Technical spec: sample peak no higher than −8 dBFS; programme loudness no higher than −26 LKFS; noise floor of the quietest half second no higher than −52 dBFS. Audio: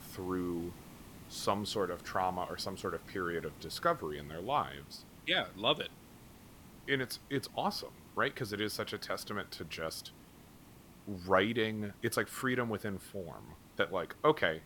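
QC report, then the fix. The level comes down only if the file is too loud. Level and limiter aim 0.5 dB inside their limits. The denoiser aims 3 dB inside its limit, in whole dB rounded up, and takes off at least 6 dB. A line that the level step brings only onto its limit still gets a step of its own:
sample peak −12.5 dBFS: in spec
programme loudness −35.5 LKFS: in spec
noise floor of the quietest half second −56 dBFS: in spec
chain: no processing needed

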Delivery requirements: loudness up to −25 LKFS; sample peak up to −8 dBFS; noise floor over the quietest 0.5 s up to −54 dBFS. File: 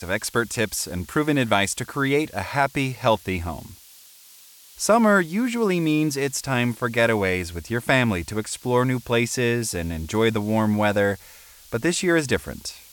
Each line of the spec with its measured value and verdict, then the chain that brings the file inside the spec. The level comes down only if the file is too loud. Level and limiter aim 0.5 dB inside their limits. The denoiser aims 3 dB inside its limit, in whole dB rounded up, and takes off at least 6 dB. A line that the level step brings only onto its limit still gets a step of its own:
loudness −22.5 LKFS: out of spec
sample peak −6.0 dBFS: out of spec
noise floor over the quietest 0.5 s −49 dBFS: out of spec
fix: broadband denoise 6 dB, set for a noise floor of −49 dBFS
level −3 dB

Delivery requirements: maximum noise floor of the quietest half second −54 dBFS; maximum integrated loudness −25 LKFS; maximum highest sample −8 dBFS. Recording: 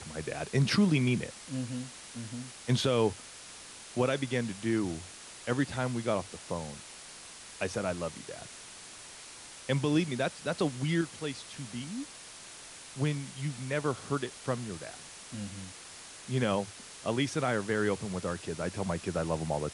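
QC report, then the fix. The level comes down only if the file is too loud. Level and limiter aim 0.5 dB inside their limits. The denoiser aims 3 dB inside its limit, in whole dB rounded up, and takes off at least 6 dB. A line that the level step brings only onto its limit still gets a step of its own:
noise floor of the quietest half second −48 dBFS: out of spec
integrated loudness −32.5 LKFS: in spec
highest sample −16.5 dBFS: in spec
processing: broadband denoise 9 dB, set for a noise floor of −48 dBFS

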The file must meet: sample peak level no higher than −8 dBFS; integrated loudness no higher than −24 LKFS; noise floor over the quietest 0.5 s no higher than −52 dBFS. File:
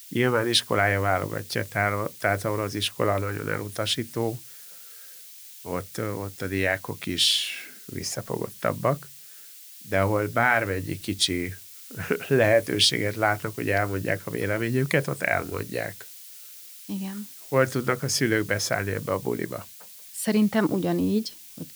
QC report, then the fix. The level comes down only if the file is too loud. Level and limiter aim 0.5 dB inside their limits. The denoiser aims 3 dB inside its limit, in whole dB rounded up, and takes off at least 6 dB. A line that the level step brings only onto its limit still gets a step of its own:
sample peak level −7.0 dBFS: out of spec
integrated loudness −25.5 LKFS: in spec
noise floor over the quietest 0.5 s −46 dBFS: out of spec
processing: broadband denoise 9 dB, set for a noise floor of −46 dBFS
brickwall limiter −8.5 dBFS

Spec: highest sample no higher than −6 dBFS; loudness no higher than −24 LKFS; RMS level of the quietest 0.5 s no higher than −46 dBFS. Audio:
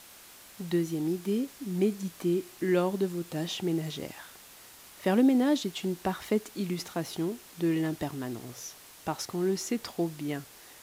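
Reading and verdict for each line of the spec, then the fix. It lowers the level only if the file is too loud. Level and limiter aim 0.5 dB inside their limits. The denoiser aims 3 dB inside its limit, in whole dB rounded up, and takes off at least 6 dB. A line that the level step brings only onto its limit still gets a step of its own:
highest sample −14.0 dBFS: in spec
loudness −30.5 LKFS: in spec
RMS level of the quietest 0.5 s −52 dBFS: in spec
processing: no processing needed

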